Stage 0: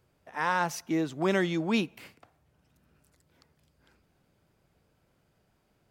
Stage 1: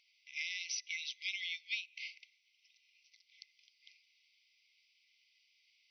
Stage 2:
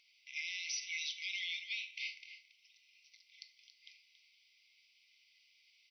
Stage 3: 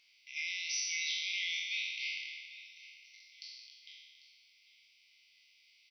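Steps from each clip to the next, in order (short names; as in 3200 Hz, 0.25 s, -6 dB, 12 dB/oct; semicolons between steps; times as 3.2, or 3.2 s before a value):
FFT band-pass 2000–6100 Hz; compressor 12:1, threshold -46 dBFS, peak gain reduction 17.5 dB; gain +10 dB
echo 0.278 s -12.5 dB; reverb RT60 0.70 s, pre-delay 6 ms, DRR 7.5 dB; limiter -32 dBFS, peak gain reduction 9 dB; gain +2.5 dB
spectral trails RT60 1.60 s; echo 0.796 s -16.5 dB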